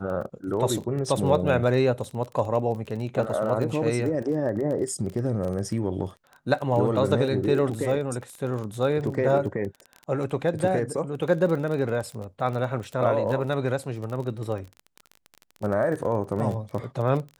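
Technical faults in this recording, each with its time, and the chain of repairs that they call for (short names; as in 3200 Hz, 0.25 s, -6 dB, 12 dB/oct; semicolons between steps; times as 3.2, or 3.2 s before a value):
crackle 22/s -31 dBFS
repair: de-click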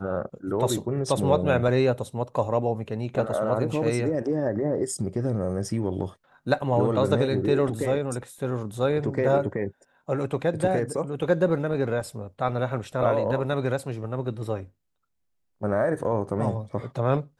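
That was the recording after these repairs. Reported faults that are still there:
none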